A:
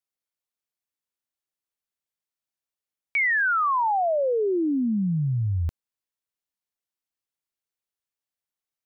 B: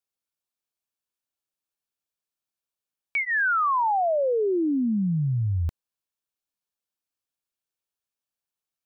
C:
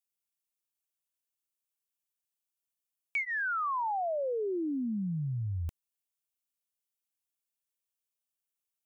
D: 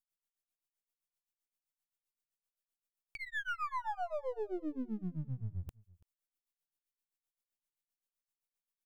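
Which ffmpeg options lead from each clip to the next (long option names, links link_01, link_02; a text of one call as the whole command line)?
ffmpeg -i in.wav -af "bandreject=frequency=2000:width=7.1" out.wav
ffmpeg -i in.wav -af "aexciter=amount=1.3:drive=7.9:freq=2400,volume=-9dB" out.wav
ffmpeg -i in.wav -af "aeval=exprs='if(lt(val(0),0),0.447*val(0),val(0))':channel_layout=same,tremolo=f=7.7:d=1,aecho=1:1:334:0.0708" out.wav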